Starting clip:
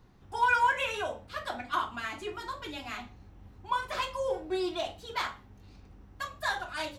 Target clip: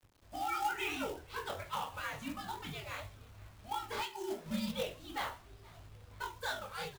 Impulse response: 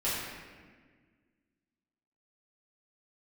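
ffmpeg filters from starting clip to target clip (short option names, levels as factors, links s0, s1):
-filter_complex "[0:a]asettb=1/sr,asplit=3[s0][s1][s2];[s0]atrim=end=4.014[s3];[s1]atrim=start=4.01:end=4.46,asetpts=PTS-STARTPTS,afade=t=in:d=0.004:c=qsin,afade=t=out:st=0.446:d=0.004:c=qsin,highpass=f=870:p=1[s4];[s2]atrim=start=4.456[s5];[s3][s4]acrossfade=d=0.004:c1=hsin:c2=qsin[s6];[s6][s5]acrossfade=d=0.004:c1=qsin:c2=hsin,asettb=1/sr,asplit=3[s7][s8][s9];[s7]atrim=end=4.984[s10];[s8]atrim=start=4.98:end=6.24,asetpts=PTS-STARTPTS,afade=t=in:d=0.004:c=qsin,afade=t=out:st=1.256:d=0.004:c=qsin,aemphasis=mode=reproduction:type=cd[s11];[s9]atrim=start=6.236[s12];[s10][s11]acrossfade=d=0.004:c1=hsin:c2=qsin[s13];[s13][s12]acrossfade=d=0.004:c1=qsin:c2=hsin,acrossover=split=2600[s14][s15];[s14]alimiter=level_in=1.06:limit=0.0631:level=0:latency=1:release=240,volume=0.944[s16];[s16][s15]amix=inputs=2:normalize=0,dynaudnorm=f=190:g=5:m=1.58,acrusher=bits=8:mix=0:aa=0.000001,flanger=delay=19:depth=7.6:speed=2.9,acrusher=bits=3:mode=log:mix=0:aa=0.000001,afreqshift=-150,asplit=2[s17][s18];[s18]asplit=4[s19][s20][s21][s22];[s19]adelay=478,afreqshift=90,volume=0.0631[s23];[s20]adelay=956,afreqshift=180,volume=0.0372[s24];[s21]adelay=1434,afreqshift=270,volume=0.0219[s25];[s22]adelay=1912,afreqshift=360,volume=0.013[s26];[s23][s24][s25][s26]amix=inputs=4:normalize=0[s27];[s17][s27]amix=inputs=2:normalize=0,volume=0.562"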